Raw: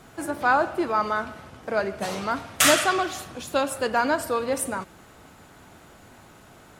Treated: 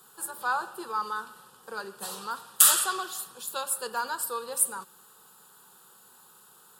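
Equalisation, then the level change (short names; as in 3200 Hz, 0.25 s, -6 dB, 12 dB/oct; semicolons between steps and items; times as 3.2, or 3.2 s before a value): tilt +4 dB/oct; bell 6000 Hz -11.5 dB 0.41 oct; fixed phaser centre 430 Hz, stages 8; -5.5 dB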